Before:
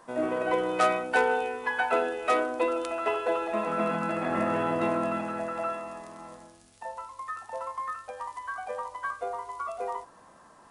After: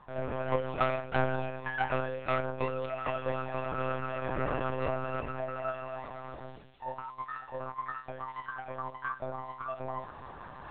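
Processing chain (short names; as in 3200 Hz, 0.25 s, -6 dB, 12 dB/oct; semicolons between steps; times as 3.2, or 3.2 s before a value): reverse; upward compressor, threshold -28 dBFS; reverse; flange 0.33 Hz, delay 0.8 ms, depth 8.9 ms, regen +43%; monotone LPC vocoder at 8 kHz 130 Hz; gain -1 dB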